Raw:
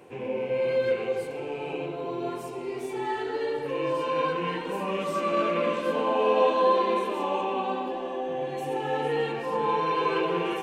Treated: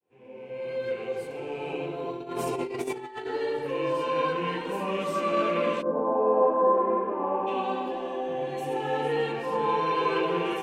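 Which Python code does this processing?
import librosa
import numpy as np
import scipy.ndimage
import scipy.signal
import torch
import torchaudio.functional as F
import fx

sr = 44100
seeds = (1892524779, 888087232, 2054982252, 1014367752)

y = fx.fade_in_head(x, sr, length_s=1.68)
y = fx.over_compress(y, sr, threshold_db=-36.0, ratio=-0.5, at=(2.11, 3.25), fade=0.02)
y = fx.lowpass(y, sr, hz=fx.line((5.81, 1000.0), (7.46, 1700.0)), slope=24, at=(5.81, 7.46), fade=0.02)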